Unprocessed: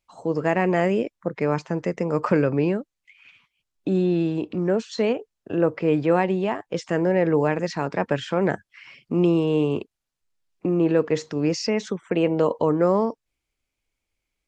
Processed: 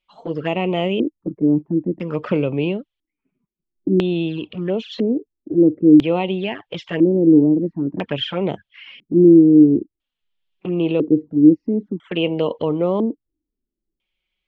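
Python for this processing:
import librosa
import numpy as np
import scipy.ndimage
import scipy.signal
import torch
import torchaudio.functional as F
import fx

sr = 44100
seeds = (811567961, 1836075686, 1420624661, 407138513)

y = fx.env_flanger(x, sr, rest_ms=5.4, full_db=-18.0)
y = fx.filter_lfo_lowpass(y, sr, shape='square', hz=0.5, low_hz=310.0, high_hz=3200.0, q=5.2)
y = F.gain(torch.from_numpy(y), 1.0).numpy()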